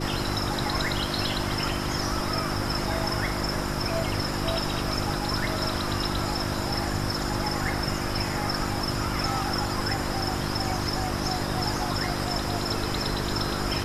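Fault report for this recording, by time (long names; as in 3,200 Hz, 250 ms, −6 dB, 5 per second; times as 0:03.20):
mains hum 50 Hz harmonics 7 −32 dBFS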